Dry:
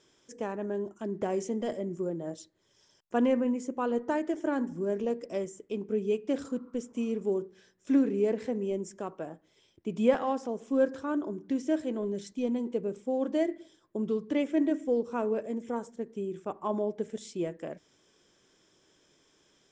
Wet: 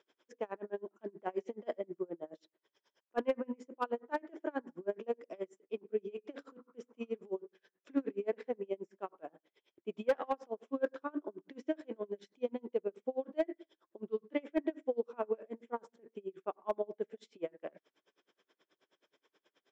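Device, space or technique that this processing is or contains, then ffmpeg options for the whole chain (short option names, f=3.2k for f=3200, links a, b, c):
helicopter radio: -af "highpass=380,lowpass=2.9k,aeval=exprs='val(0)*pow(10,-32*(0.5-0.5*cos(2*PI*9.4*n/s))/20)':c=same,asoftclip=type=hard:threshold=-23.5dB,volume=1.5dB"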